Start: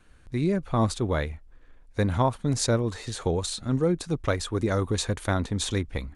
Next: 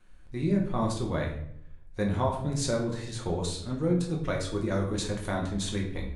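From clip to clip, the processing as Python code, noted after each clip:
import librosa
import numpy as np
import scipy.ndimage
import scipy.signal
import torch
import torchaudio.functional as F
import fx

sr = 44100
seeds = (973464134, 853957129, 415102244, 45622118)

y = fx.room_shoebox(x, sr, seeds[0], volume_m3=120.0, walls='mixed', distance_m=0.96)
y = y * 10.0 ** (-7.5 / 20.0)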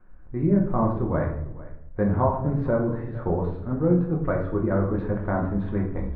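y = scipy.signal.sosfilt(scipy.signal.butter(4, 1500.0, 'lowpass', fs=sr, output='sos'), x)
y = y + 10.0 ** (-19.0 / 20.0) * np.pad(y, (int(450 * sr / 1000.0), 0))[:len(y)]
y = y * 10.0 ** (5.5 / 20.0)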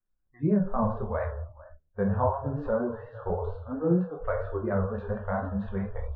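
y = fx.vibrato(x, sr, rate_hz=4.3, depth_cents=74.0)
y = fx.noise_reduce_blind(y, sr, reduce_db=29)
y = y * 10.0 ** (-3.0 / 20.0)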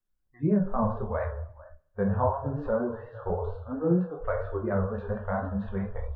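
y = fx.echo_thinned(x, sr, ms=68, feedback_pct=59, hz=150.0, wet_db=-23)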